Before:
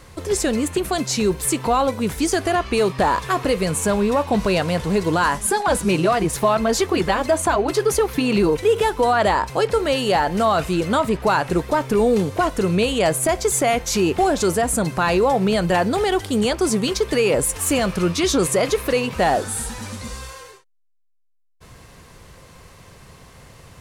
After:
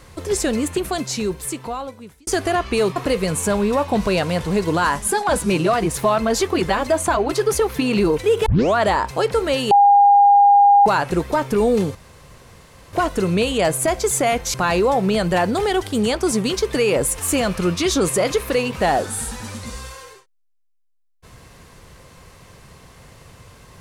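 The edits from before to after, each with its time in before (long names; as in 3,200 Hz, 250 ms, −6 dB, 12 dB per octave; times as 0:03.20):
0:00.70–0:02.27: fade out
0:02.96–0:03.35: remove
0:08.85: tape start 0.30 s
0:10.10–0:11.25: beep over 809 Hz −8 dBFS
0:12.34: splice in room tone 0.98 s
0:13.95–0:14.92: remove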